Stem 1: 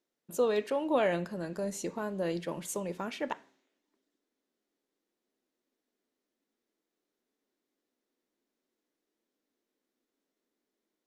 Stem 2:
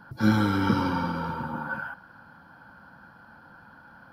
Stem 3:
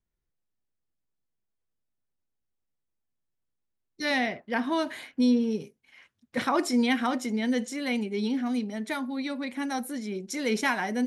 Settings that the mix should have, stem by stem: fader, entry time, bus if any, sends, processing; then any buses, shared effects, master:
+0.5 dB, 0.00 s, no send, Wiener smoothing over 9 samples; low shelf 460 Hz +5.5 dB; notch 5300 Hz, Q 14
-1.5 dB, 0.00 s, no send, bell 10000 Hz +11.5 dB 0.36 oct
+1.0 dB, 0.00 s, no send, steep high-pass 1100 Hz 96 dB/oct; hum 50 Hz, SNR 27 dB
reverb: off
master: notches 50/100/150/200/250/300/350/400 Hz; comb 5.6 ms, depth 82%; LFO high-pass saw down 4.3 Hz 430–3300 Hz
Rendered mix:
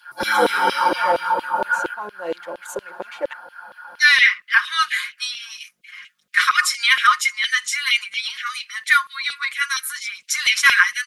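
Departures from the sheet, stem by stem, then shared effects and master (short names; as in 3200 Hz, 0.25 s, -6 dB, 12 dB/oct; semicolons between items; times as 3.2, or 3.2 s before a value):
stem 2 -1.5 dB -> +6.5 dB; stem 3 +1.0 dB -> +12.0 dB; master: missing notches 50/100/150/200/250/300/350/400 Hz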